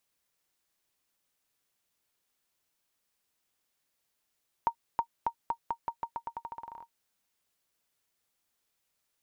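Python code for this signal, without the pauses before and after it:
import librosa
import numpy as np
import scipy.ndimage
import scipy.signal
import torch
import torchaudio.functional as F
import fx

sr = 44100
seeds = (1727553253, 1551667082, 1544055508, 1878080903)

y = fx.bouncing_ball(sr, first_gap_s=0.32, ratio=0.86, hz=929.0, decay_ms=81.0, level_db=-16.0)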